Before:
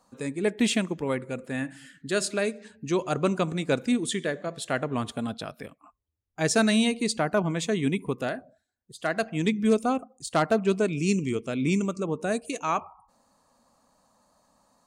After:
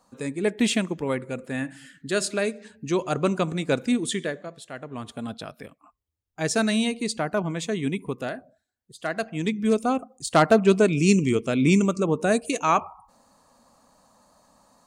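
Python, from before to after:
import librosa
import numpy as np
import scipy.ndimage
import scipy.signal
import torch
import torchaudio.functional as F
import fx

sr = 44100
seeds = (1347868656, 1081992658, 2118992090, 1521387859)

y = fx.gain(x, sr, db=fx.line((4.21, 1.5), (4.71, -10.5), (5.31, -1.0), (9.55, -1.0), (10.41, 6.0)))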